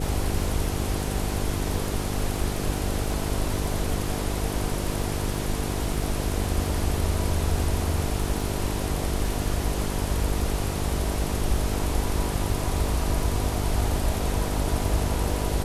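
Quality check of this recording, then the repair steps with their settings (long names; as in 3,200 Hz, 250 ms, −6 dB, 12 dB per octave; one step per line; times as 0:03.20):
mains buzz 50 Hz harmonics 9 −30 dBFS
surface crackle 27 per second −34 dBFS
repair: click removal
hum removal 50 Hz, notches 9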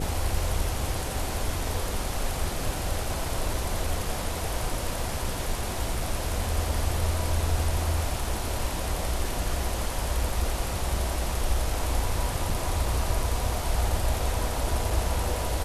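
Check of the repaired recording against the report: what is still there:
none of them is left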